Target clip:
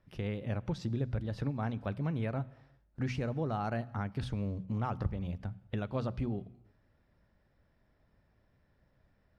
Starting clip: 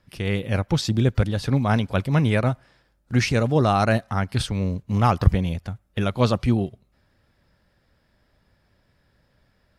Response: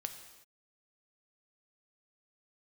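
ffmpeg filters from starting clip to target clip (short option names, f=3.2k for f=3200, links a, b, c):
-filter_complex "[0:a]lowpass=f=1.5k:p=1,bandreject=f=60:t=h:w=6,bandreject=f=120:t=h:w=6,bandreject=f=180:t=h:w=6,bandreject=f=240:t=h:w=6,acompressor=threshold=-28dB:ratio=3,asplit=2[a][b];[1:a]atrim=start_sample=2205,lowshelf=f=180:g=7.5[c];[b][c]afir=irnorm=-1:irlink=0,volume=-9.5dB[d];[a][d]amix=inputs=2:normalize=0,asetrate=45938,aresample=44100,volume=-8dB"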